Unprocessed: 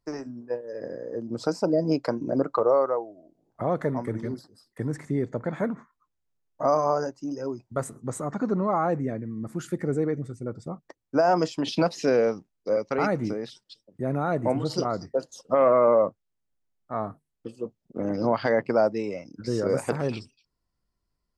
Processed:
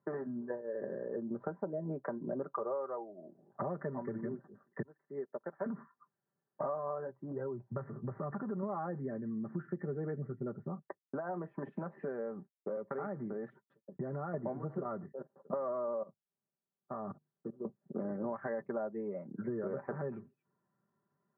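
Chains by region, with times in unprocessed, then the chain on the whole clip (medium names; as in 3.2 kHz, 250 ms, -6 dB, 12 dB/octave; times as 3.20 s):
4.82–5.66 s: Bessel high-pass 590 Hz + treble shelf 2.3 kHz -12 dB + upward expansion 2.5:1, over -49 dBFS
7.09–8.63 s: resonant low shelf 140 Hz +7.5 dB, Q 1.5 + compression 2.5:1, threshold -33 dBFS
10.63–14.34 s: expander -55 dBFS + compression 2:1, threshold -38 dBFS
15.12–17.65 s: low-pass 1.5 kHz + level held to a coarse grid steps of 21 dB
whole clip: comb 5.1 ms, depth 65%; compression 6:1, threshold -40 dBFS; Chebyshev band-pass 100–1800 Hz, order 5; trim +4 dB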